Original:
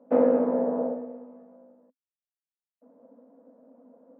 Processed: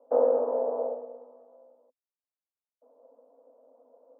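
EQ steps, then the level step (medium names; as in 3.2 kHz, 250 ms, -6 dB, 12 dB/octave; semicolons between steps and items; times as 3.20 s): high-pass 420 Hz 24 dB/octave; low-pass 1.1 kHz 24 dB/octave; 0.0 dB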